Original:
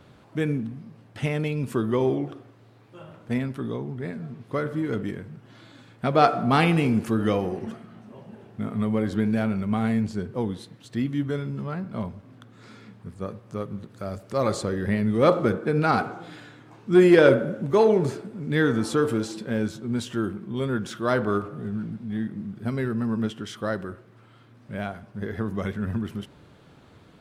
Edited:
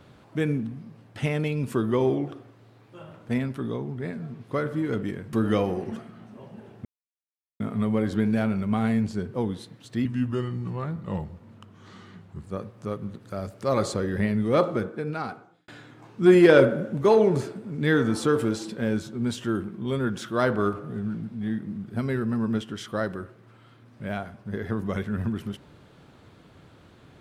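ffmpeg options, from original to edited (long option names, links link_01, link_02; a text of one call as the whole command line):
ffmpeg -i in.wav -filter_complex "[0:a]asplit=6[link_01][link_02][link_03][link_04][link_05][link_06];[link_01]atrim=end=5.332[link_07];[link_02]atrim=start=7.078:end=8.6,asetpts=PTS-STARTPTS,afade=type=out:start_time=1.518:duration=0.004:curve=hsin,apad=pad_dur=0.75[link_08];[link_03]atrim=start=8.6:end=11.054,asetpts=PTS-STARTPTS,afade=type=in:duration=0.004:curve=hsin[link_09];[link_04]atrim=start=11.05:end=13.13,asetpts=PTS-STARTPTS,asetrate=38367,aresample=44100,atrim=end_sample=105434,asetpts=PTS-STARTPTS[link_10];[link_05]atrim=start=13.126:end=16.37,asetpts=PTS-STARTPTS,afade=type=out:start_time=1.724:duration=1.52[link_11];[link_06]atrim=start=16.37,asetpts=PTS-STARTPTS,afade=type=in:duration=0.004:curve=hsin[link_12];[link_08][link_09]concat=n=2:v=0:a=1[link_13];[link_07][link_13]acrossfade=duration=0.004:curve1=hsin:curve2=hsin[link_14];[link_14][link_10]acrossfade=duration=0.004:curve1=hsin:curve2=hsin[link_15];[link_11][link_12]concat=n=2:v=0:a=1[link_16];[link_15][link_16]acrossfade=duration=0.004:curve1=hsin:curve2=hsin" out.wav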